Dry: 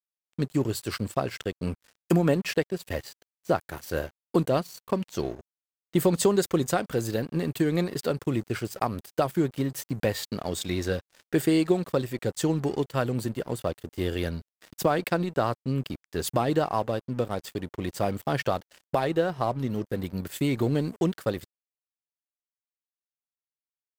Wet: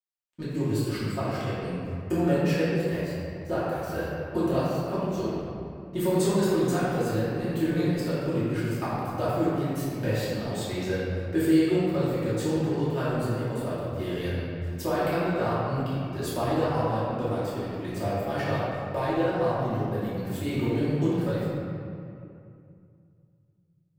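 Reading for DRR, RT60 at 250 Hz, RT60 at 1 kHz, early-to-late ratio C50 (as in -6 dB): -11.5 dB, 3.0 s, 2.4 s, -4.0 dB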